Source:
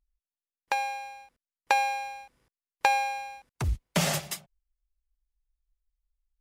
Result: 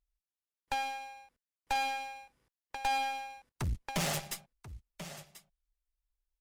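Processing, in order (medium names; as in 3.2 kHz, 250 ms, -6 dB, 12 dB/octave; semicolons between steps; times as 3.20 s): delay 1037 ms -14.5 dB; valve stage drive 28 dB, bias 0.8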